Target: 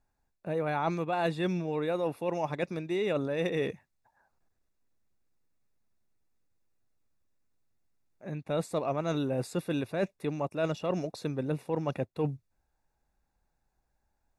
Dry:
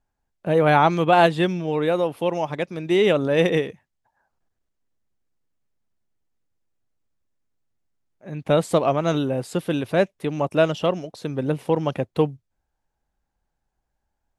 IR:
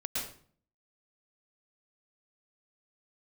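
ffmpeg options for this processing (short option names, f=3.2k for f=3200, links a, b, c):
-af "asuperstop=centerf=3100:order=8:qfactor=6.9,areverse,acompressor=threshold=-28dB:ratio=6,areverse"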